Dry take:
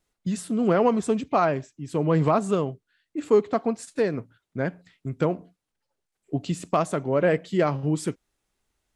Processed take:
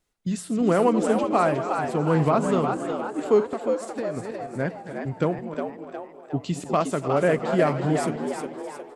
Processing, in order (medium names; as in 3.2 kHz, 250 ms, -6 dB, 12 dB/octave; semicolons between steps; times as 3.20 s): backward echo that repeats 154 ms, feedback 54%, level -12 dB; 3.42–4.17 s: compression, threshold -28 dBFS, peak gain reduction 10 dB; on a send: frequency-shifting echo 360 ms, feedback 48%, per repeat +95 Hz, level -6.5 dB